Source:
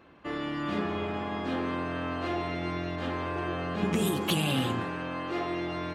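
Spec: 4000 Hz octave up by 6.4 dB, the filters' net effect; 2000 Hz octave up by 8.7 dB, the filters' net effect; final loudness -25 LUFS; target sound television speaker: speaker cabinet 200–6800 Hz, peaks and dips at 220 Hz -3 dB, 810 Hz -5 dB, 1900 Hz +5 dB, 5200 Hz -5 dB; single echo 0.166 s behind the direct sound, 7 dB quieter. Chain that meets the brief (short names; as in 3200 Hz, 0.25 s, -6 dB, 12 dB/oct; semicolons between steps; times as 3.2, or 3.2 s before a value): speaker cabinet 200–6800 Hz, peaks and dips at 220 Hz -3 dB, 810 Hz -5 dB, 1900 Hz +5 dB, 5200 Hz -5 dB; bell 2000 Hz +6.5 dB; bell 4000 Hz +6 dB; echo 0.166 s -7 dB; gain +3.5 dB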